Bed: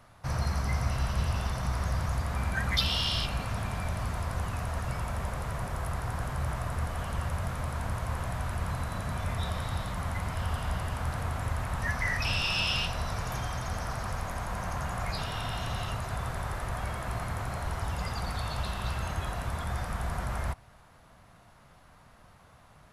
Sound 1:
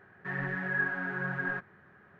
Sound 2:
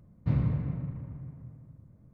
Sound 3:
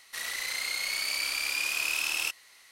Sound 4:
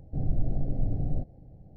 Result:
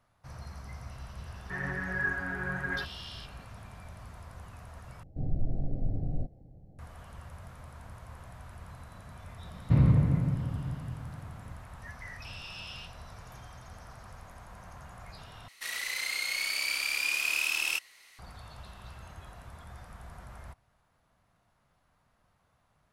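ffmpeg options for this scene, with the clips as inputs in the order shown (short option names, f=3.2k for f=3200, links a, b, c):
-filter_complex "[0:a]volume=-14.5dB[a];[2:a]alimiter=level_in=19dB:limit=-1dB:release=50:level=0:latency=1[b];[3:a]equalizer=f=2.4k:t=o:w=0.79:g=3.5[c];[a]asplit=3[d][e][f];[d]atrim=end=5.034[g];[4:a]atrim=end=1.76,asetpts=PTS-STARTPTS,volume=-3.5dB[h];[e]atrim=start=6.786:end=15.484[i];[c]atrim=end=2.71,asetpts=PTS-STARTPTS,volume=-2.5dB[j];[f]atrim=start=18.186[k];[1:a]atrim=end=2.19,asetpts=PTS-STARTPTS,volume=-1dB,afade=t=in:d=0.004:c=hsin,afade=t=out:st=2.186:d=0.004:c=hsin,adelay=1250[l];[b]atrim=end=2.13,asetpts=PTS-STARTPTS,volume=-12.5dB,afade=t=in:d=0.004:c=hsin,afade=t=out:st=2.126:d=0.004:c=hsin,adelay=9440[m];[g][h]acrossfade=d=0.004:c1=hsin:c2=hsin[n];[n][i]acrossfade=d=0.004:c1=hsin:c2=hsin[o];[o][j]acrossfade=d=0.004:c1=hsin:c2=hsin[p];[p][k]acrossfade=d=0.004:c1=hsin:c2=hsin[q];[q][l][m]amix=inputs=3:normalize=0"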